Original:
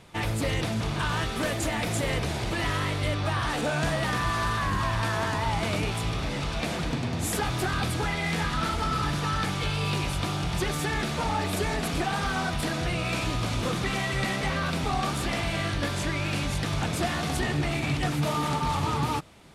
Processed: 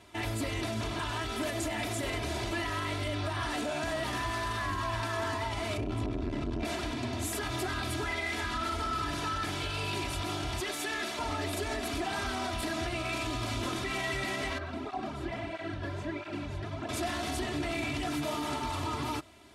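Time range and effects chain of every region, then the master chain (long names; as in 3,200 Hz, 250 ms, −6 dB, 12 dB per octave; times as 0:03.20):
0:05.77–0:06.65: spectral tilt −3 dB per octave + saturating transformer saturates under 380 Hz
0:10.60–0:11.19: high-pass filter 460 Hz 6 dB per octave + gain into a clipping stage and back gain 22 dB
0:14.58–0:16.89: low-pass filter 1,100 Hz 6 dB per octave + through-zero flanger with one copy inverted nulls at 1.5 Hz, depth 4.7 ms
whole clip: high-pass filter 61 Hz; comb filter 3 ms, depth 93%; brickwall limiter −19.5 dBFS; level −5 dB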